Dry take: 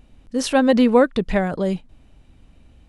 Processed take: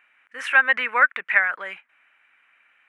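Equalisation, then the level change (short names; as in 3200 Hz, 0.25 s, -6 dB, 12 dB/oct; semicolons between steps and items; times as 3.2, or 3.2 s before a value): resonant high-pass 1500 Hz, resonance Q 2.7; resonant high shelf 3200 Hz -12 dB, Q 3; 0.0 dB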